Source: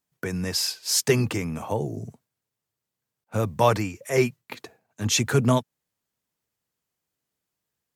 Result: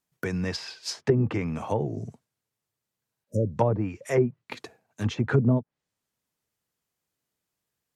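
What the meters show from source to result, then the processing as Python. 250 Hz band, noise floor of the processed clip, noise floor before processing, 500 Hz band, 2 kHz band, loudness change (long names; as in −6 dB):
0.0 dB, below −85 dBFS, below −85 dBFS, −2.0 dB, −5.0 dB, −2.5 dB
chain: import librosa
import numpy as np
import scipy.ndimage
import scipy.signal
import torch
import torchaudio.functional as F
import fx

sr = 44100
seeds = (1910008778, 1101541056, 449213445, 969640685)

y = fx.env_lowpass_down(x, sr, base_hz=450.0, full_db=-16.5)
y = fx.spec_repair(y, sr, seeds[0], start_s=3.1, length_s=0.45, low_hz=630.0, high_hz=5000.0, source='before')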